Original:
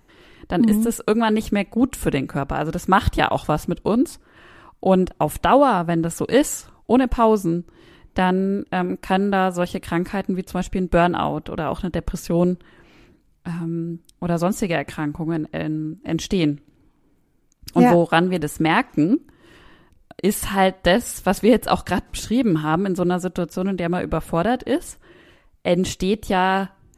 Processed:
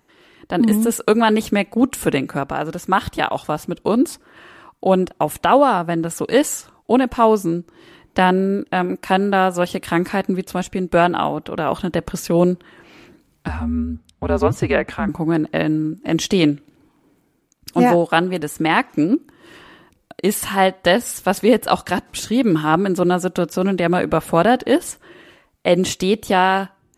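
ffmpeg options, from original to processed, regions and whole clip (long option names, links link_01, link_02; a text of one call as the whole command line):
ffmpeg -i in.wav -filter_complex "[0:a]asettb=1/sr,asplit=3[link_01][link_02][link_03];[link_01]atrim=end=13.484[link_04];[link_02]atrim=start=13.48:end=15.09,asetpts=PTS-STARTPTS,afade=type=in:duration=0.004:curve=qsin,afade=type=out:start_time=1.606:duration=0.004:curve=qsin,afreqshift=-93,aemphasis=mode=reproduction:type=75kf[link_05];[link_03]atrim=start=15.086[link_06];[link_04][link_05]acrossfade=duration=0.004:curve1=hsin:curve2=qsin[link_07];[link_07][link_06]acrossfade=duration=0.004:curve1=qsin:curve2=hsin,highpass=frequency=220:poles=1,dynaudnorm=framelen=100:gausssize=11:maxgain=11.5dB,volume=-1dB" out.wav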